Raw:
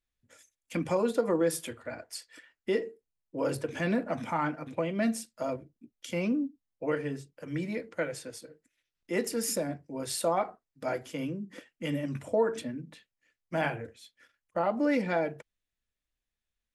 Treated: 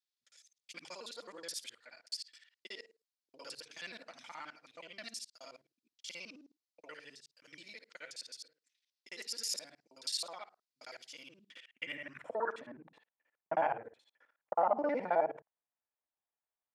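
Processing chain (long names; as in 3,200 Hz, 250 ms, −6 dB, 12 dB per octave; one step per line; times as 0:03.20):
reversed piece by piece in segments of 53 ms
band-pass filter sweep 4,600 Hz → 840 Hz, 0:11.19–0:12.89
level +4 dB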